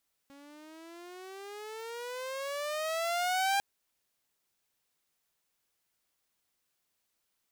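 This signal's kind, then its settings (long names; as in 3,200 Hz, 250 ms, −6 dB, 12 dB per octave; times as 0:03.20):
pitch glide with a swell saw, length 3.30 s, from 276 Hz, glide +18.5 semitones, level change +26 dB, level −23 dB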